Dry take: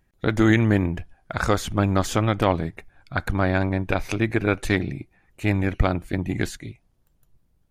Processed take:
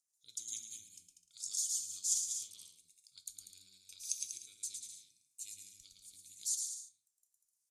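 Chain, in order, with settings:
inverse Chebyshev high-pass filter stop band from 1,900 Hz, stop band 60 dB
bouncing-ball delay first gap 110 ms, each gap 0.75×, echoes 5
rotating-speaker cabinet horn 5 Hz, later 0.85 Hz, at 0:02.20
Chebyshev low-pass filter 8,400 Hz, order 2
on a send at −8 dB: convolution reverb RT60 0.30 s, pre-delay 3 ms
on the sum: level +6.5 dB

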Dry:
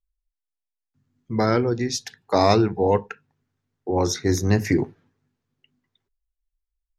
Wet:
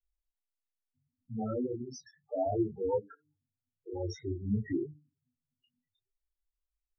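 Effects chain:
hum removal 149.4 Hz, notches 3
spectral peaks only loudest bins 4
micro pitch shift up and down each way 21 cents
level −6 dB

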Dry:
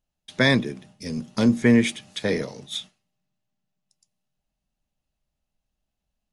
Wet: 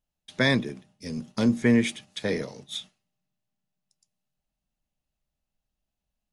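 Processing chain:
0:00.69–0:02.69: noise gate −40 dBFS, range −7 dB
level −3.5 dB

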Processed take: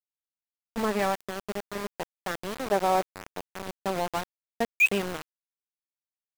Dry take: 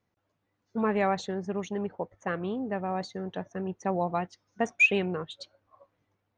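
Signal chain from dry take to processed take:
gain on a spectral selection 0:02.59–0:03.14, 290–1,700 Hz +9 dB
centre clipping without the shift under −27.5 dBFS

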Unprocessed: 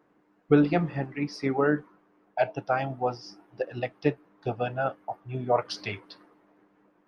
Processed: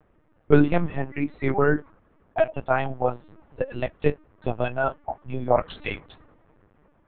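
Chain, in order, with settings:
linear-prediction vocoder at 8 kHz pitch kept
level +4 dB

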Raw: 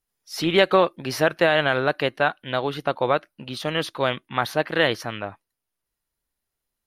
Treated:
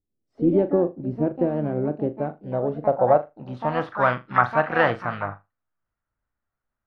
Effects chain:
dynamic equaliser 950 Hz, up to +3 dB, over −34 dBFS, Q 1.2
pitch-shifted copies added +7 semitones −6 dB
graphic EQ with 15 bands 100 Hz +4 dB, 400 Hz −6 dB, 1,000 Hz −5 dB, 10,000 Hz +6 dB
low-pass filter sweep 350 Hz → 1,300 Hz, 0:02.11–0:04.05
on a send: flutter between parallel walls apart 6.9 metres, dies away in 0.21 s

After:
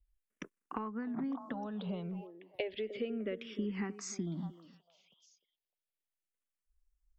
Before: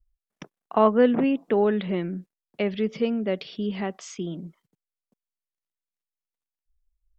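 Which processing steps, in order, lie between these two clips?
downward compressor 16 to 1, threshold −30 dBFS, peak gain reduction 18.5 dB
on a send: echo through a band-pass that steps 303 ms, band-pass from 370 Hz, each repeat 1.4 octaves, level −8.5 dB
on the sum: frequency shifter mixed with the dry sound −0.33 Hz
level −1 dB

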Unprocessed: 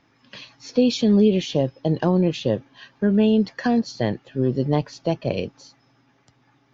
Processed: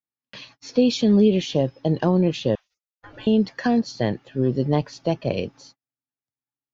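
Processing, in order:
0:02.55–0:03.27: gate on every frequency bin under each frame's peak −30 dB weak
noise gate −48 dBFS, range −41 dB

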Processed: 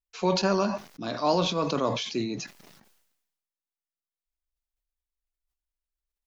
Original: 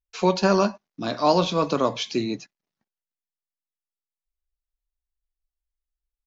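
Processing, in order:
level that may fall only so fast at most 55 dB per second
level −5.5 dB

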